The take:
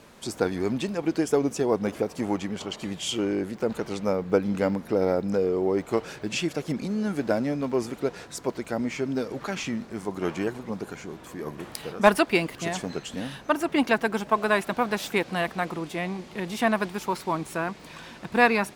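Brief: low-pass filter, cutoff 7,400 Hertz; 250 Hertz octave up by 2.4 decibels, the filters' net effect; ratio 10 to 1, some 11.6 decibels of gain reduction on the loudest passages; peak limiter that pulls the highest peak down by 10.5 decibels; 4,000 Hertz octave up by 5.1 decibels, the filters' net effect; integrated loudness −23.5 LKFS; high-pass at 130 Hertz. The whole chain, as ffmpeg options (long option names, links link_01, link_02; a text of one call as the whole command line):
ffmpeg -i in.wav -af "highpass=130,lowpass=7400,equalizer=frequency=250:width_type=o:gain=3.5,equalizer=frequency=4000:width_type=o:gain=7,acompressor=threshold=-23dB:ratio=10,volume=8dB,alimiter=limit=-12dB:level=0:latency=1" out.wav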